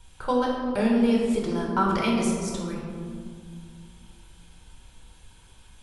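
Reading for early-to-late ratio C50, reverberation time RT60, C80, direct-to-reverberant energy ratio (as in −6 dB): 1.0 dB, 2.1 s, 2.5 dB, −3.5 dB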